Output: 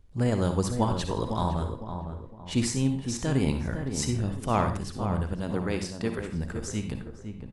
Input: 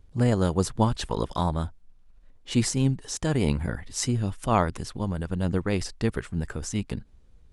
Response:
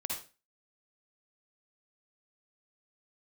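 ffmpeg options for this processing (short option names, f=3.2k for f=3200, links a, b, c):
-filter_complex "[0:a]asettb=1/sr,asplit=3[a][b][c];[a]atrim=end=5.334[d];[b]atrim=start=5.33:end=6.19,asetpts=PTS-STARTPTS,afade=t=in:d=0.004:c=qsin,afade=t=out:st=0.856:d=0.004:c=qsin,highpass=170[e];[c]atrim=start=6.186[f];[d][e]acrossfade=d=0.004:c1=hsin:c2=qsin[g];[g][f]acrossfade=d=0.004:c1=qsin:c2=hsin,asplit=2[h][i];[i]adelay=508,lowpass=f=1.2k:p=1,volume=-7dB,asplit=2[j][k];[k]adelay=508,lowpass=f=1.2k:p=1,volume=0.38,asplit=2[l][m];[m]adelay=508,lowpass=f=1.2k:p=1,volume=0.38,asplit=2[n][o];[o]adelay=508,lowpass=f=1.2k:p=1,volume=0.38[p];[h][j][l][n][p]amix=inputs=5:normalize=0,asplit=2[q][r];[1:a]atrim=start_sample=2205[s];[r][s]afir=irnorm=-1:irlink=0,volume=-3.5dB[t];[q][t]amix=inputs=2:normalize=0,volume=-6.5dB"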